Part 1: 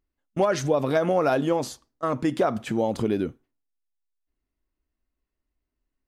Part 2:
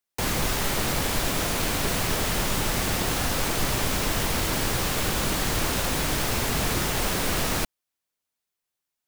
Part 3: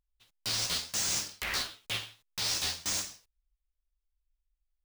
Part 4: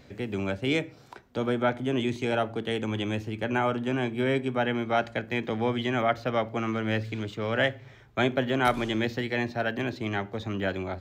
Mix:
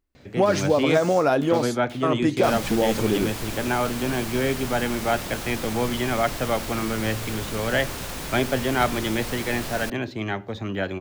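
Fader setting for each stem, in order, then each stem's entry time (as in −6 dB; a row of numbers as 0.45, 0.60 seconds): +2.0, −7.0, −11.0, +2.0 decibels; 0.00, 2.25, 0.00, 0.15 seconds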